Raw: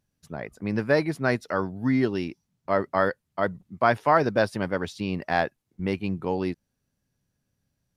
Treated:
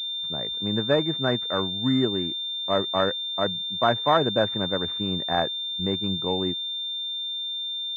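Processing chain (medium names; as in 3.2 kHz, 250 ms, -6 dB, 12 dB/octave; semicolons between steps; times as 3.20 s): class-D stage that switches slowly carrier 3.6 kHz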